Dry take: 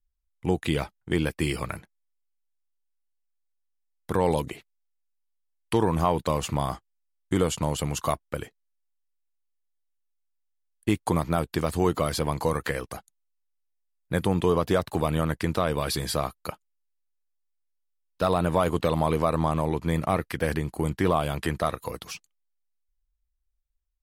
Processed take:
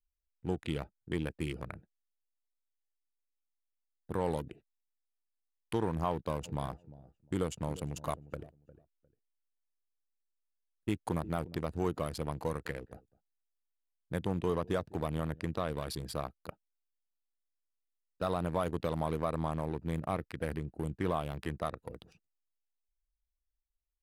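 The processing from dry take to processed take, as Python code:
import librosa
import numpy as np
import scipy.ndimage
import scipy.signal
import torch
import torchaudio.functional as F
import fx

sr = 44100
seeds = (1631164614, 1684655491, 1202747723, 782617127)

y = fx.echo_feedback(x, sr, ms=354, feedback_pct=20, wet_db=-15.0, at=(6.44, 11.62), fade=0.02)
y = fx.echo_single(y, sr, ms=204, db=-22.0, at=(12.45, 15.51))
y = fx.wiener(y, sr, points=41)
y = y * librosa.db_to_amplitude(-9.0)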